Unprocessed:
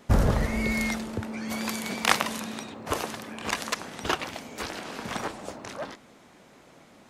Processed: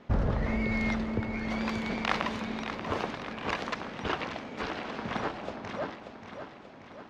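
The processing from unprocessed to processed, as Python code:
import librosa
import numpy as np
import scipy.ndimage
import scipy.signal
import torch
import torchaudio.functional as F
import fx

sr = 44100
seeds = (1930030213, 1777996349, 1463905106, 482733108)

p1 = fx.over_compress(x, sr, threshold_db=-28.0, ratio=-0.5)
p2 = x + (p1 * librosa.db_to_amplitude(-0.5))
p3 = fx.air_absorb(p2, sr, metres=220.0)
p4 = fx.echo_feedback(p3, sr, ms=584, feedback_pct=55, wet_db=-9.0)
y = p4 * librosa.db_to_amplitude(-6.5)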